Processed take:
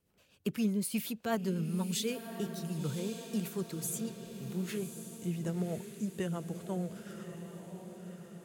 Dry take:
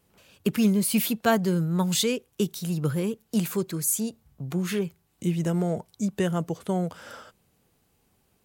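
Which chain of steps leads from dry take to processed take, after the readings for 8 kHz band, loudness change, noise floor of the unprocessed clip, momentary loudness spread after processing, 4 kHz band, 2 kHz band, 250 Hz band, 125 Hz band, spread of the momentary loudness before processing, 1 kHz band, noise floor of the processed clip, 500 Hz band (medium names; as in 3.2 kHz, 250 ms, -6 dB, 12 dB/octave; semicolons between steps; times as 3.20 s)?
-10.5 dB, -10.0 dB, -69 dBFS, 12 LU, -10.5 dB, -11.0 dB, -9.0 dB, -9.0 dB, 10 LU, -11.5 dB, -65 dBFS, -9.5 dB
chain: rotary cabinet horn 8 Hz; echo that smears into a reverb 1092 ms, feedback 55%, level -9 dB; trim -8.5 dB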